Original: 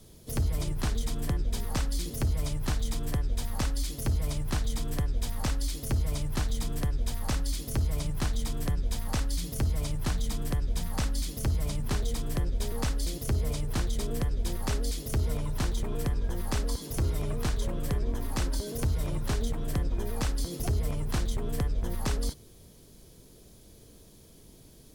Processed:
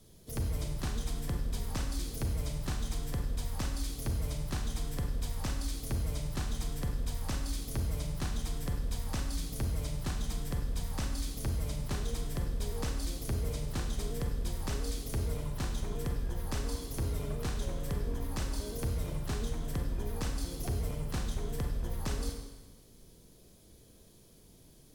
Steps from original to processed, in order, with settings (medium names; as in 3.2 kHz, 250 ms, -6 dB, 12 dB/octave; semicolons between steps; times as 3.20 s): Schroeder reverb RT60 1.2 s, combs from 32 ms, DRR 3.5 dB; trim -6 dB